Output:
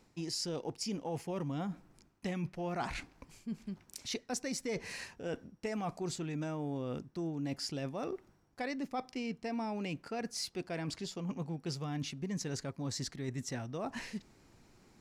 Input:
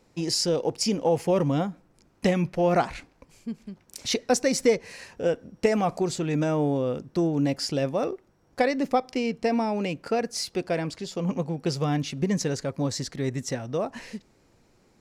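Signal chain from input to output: peaking EQ 520 Hz -6.5 dB 0.58 oct; reverse; compression 4:1, threshold -37 dBFS, peak gain reduction 15.5 dB; reverse

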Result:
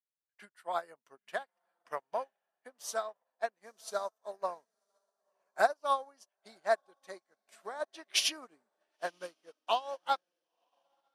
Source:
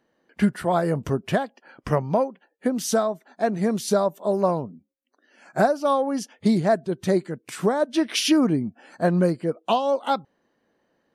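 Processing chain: high-pass 850 Hz 12 dB/octave; on a send: echo that smears into a reverb 1011 ms, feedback 43%, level -15 dB; on the sum: upward expansion 2.5:1, over -46 dBFS

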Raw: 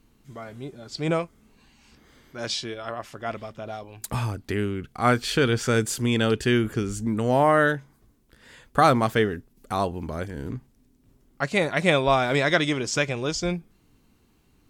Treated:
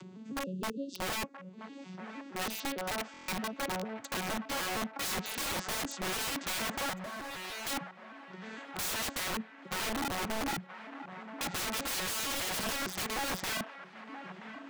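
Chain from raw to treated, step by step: vocoder on a broken chord minor triad, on F#3, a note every 153 ms; 0.43–1.22 s: spectral selection erased 570–2600 Hz; 9.34–9.93 s: high-order bell 1.1 kHz -10.5 dB 1.1 oct; in parallel at -1 dB: upward compressor, threshold -28 dBFS; on the sum: integer overflow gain 17 dB; 6.93–7.67 s: valve stage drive 36 dB, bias 0.45; integer overflow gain 24 dB; on a send: feedback echo behind a band-pass 977 ms, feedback 56%, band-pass 1.1 kHz, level -10 dB; on the sum: buffer glitch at 3.12 s, samples 1024, times 6; trim -5.5 dB

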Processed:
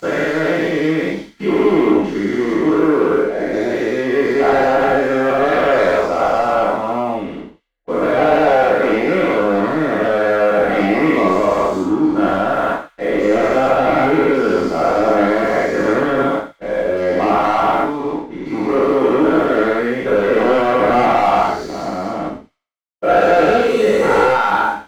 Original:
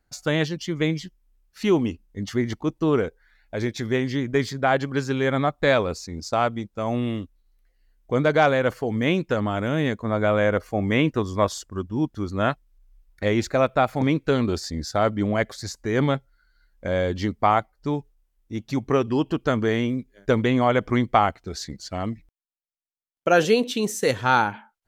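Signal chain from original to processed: every event in the spectrogram widened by 480 ms; three-band isolator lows -15 dB, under 270 Hz, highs -12 dB, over 2.4 kHz; waveshaping leveller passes 3; treble shelf 2.2 kHz -9 dB; on a send: feedback echo behind a high-pass 88 ms, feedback 32%, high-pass 3.1 kHz, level -10.5 dB; on the sum: gated-style reverb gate 150 ms falling, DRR -3 dB; trim -10.5 dB

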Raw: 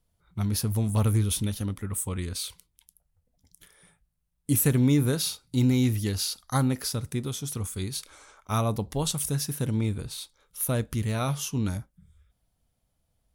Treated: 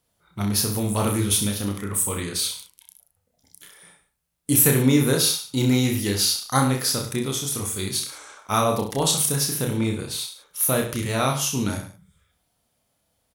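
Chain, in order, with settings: high-pass 320 Hz 6 dB/octave; reverse bouncing-ball echo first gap 30 ms, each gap 1.1×, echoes 5; trim +7 dB

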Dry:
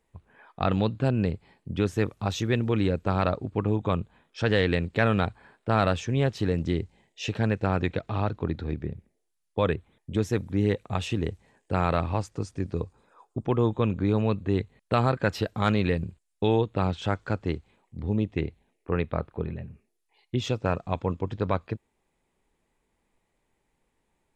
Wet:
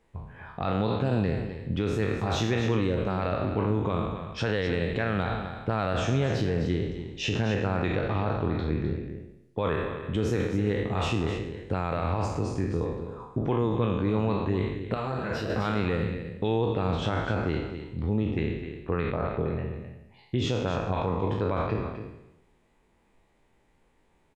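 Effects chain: spectral sustain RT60 0.72 s; low-pass 3.8 kHz 6 dB/octave; in parallel at -0.5 dB: compression, threshold -39 dBFS, peak gain reduction 20.5 dB; on the sum: peak limiter -17 dBFS, peak gain reduction 9.5 dB; on a send: delay 257 ms -10 dB; 14.94–15.50 s: on the sum: detune thickener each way 26 cents

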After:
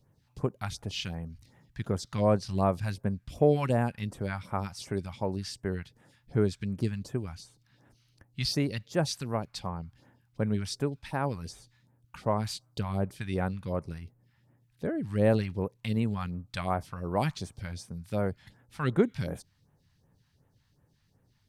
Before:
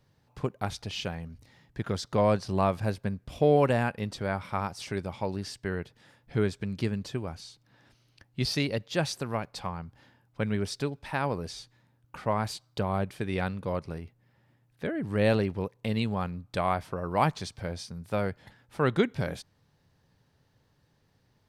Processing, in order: phase shifter stages 2, 2.7 Hz, lowest notch 390–4400 Hz

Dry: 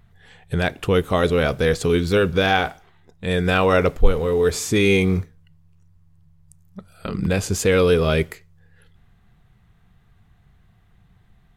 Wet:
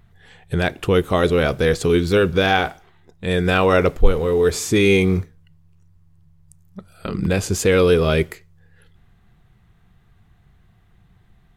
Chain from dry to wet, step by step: peaking EQ 350 Hz +4 dB 0.28 oct; trim +1 dB

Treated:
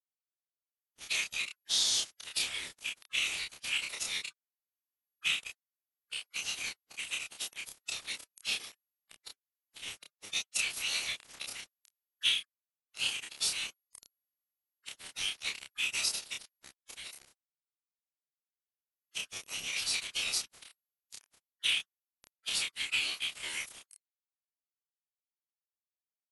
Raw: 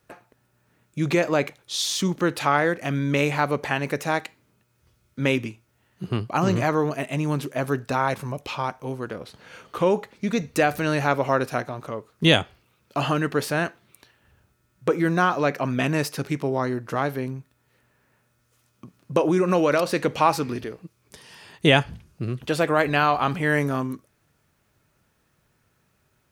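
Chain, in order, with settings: steep high-pass 2.5 kHz 48 dB/octave; compression 6:1, threshold -31 dBFS, peak gain reduction 14 dB; small samples zeroed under -37 dBFS; formant-preserving pitch shift -11.5 st; doubling 29 ms -2.5 dB; trim +5.5 dB

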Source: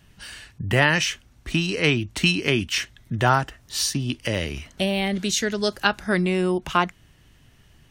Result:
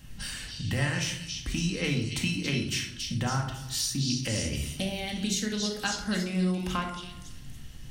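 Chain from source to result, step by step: tone controls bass +7 dB, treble +6 dB; de-hum 50.29 Hz, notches 31; compression 2.5:1, threshold -36 dBFS, peak gain reduction 16.5 dB; repeats whose band climbs or falls 278 ms, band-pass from 4.2 kHz, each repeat 0.7 oct, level -1 dB; reverberation RT60 0.75 s, pre-delay 4 ms, DRR 1.5 dB

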